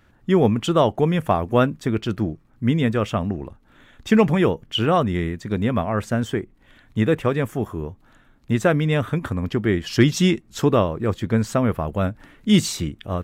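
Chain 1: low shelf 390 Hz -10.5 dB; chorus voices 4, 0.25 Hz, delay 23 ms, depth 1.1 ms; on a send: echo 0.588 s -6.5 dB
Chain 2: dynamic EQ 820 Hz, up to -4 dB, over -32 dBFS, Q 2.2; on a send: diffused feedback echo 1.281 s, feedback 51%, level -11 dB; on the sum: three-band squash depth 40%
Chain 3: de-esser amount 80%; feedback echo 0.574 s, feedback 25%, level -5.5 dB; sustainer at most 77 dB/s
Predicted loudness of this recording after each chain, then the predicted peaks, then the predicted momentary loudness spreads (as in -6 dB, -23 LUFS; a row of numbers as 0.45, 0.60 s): -28.5, -22.0, -20.5 LUFS; -6.5, -4.0, -4.0 dBFS; 10, 7, 8 LU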